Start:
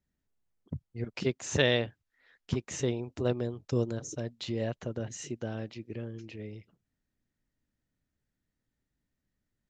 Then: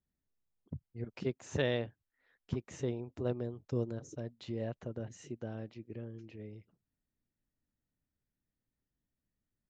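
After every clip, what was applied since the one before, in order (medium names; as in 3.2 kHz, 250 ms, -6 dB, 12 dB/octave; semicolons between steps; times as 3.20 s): treble shelf 2.1 kHz -9.5 dB; trim -5 dB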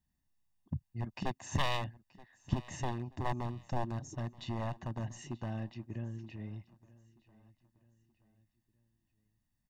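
one-sided wavefolder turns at -32.5 dBFS; comb 1.1 ms, depth 75%; feedback delay 928 ms, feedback 42%, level -21.5 dB; trim +2 dB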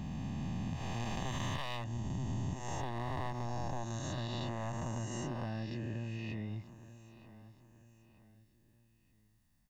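reverse spectral sustain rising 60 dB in 2.71 s; compression 5:1, threshold -41 dBFS, peak gain reduction 17 dB; trim +5 dB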